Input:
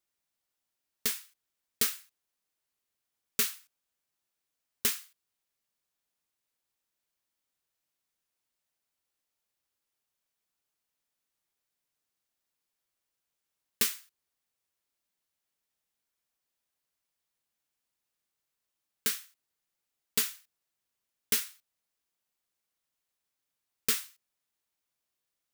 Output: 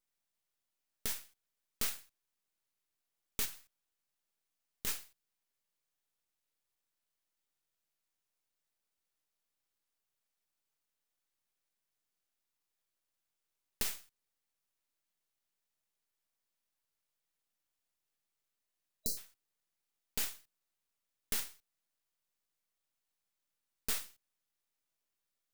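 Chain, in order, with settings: half-wave rectifier; 18.67–19.15 s: spectral replace 640–3900 Hz before; peak limiter -19.5 dBFS, peak gain reduction 7.5 dB; 3.44–4.87 s: compression 4:1, threshold -38 dBFS, peak gain reduction 6.5 dB; trim +1 dB

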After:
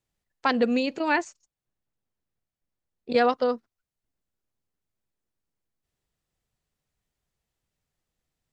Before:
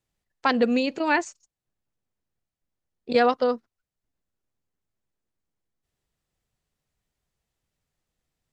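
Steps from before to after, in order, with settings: 1.22–3.17 s: treble shelf 5.2 kHz -5 dB; trim -1.5 dB

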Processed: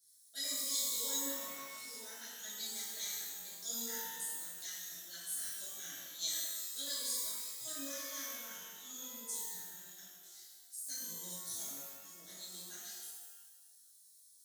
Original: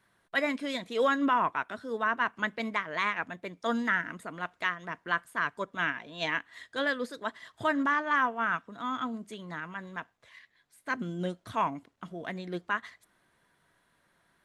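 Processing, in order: inverse Chebyshev high-pass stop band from 2.8 kHz, stop band 40 dB; pitch-shifted reverb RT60 1.2 s, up +12 st, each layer -2 dB, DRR -10 dB; trim +8.5 dB

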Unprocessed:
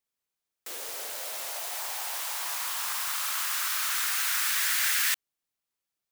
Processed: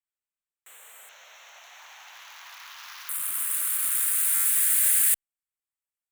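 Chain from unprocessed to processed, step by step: local Wiener filter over 9 samples; amplifier tone stack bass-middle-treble 10-0-10; saturation -24 dBFS, distortion -16 dB; resonant high shelf 7.1 kHz +6.5 dB, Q 3, from 1.09 s -6 dB, from 3.09 s +10 dB; buffer glitch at 4.34 s, times 8

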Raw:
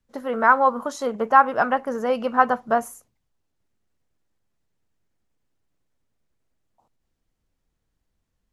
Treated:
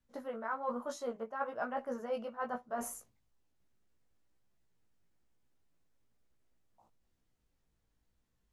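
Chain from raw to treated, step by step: dynamic bell 600 Hz, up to +6 dB, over -35 dBFS, Q 3.9; reverse; compression 6:1, threshold -33 dBFS, peak gain reduction 23 dB; reverse; chorus 1.1 Hz, delay 16 ms, depth 2.1 ms

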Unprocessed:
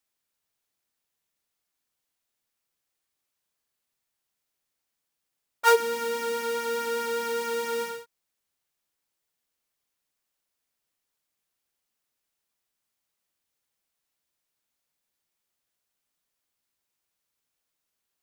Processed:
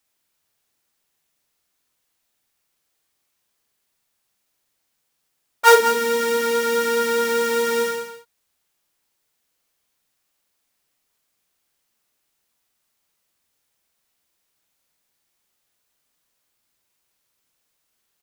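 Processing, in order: loudspeakers at several distances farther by 16 m -5 dB, 66 m -10 dB; trim +7.5 dB

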